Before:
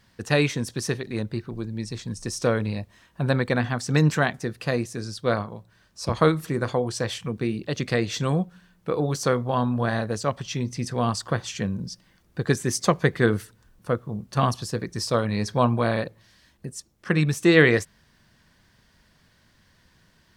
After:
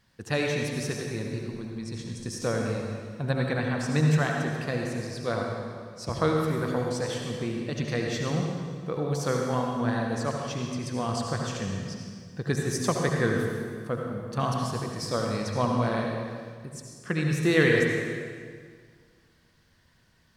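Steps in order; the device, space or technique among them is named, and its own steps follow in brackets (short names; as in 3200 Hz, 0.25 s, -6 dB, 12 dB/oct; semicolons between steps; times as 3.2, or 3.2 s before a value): stairwell (reverb RT60 1.9 s, pre-delay 63 ms, DRR 0.5 dB); gain -6.5 dB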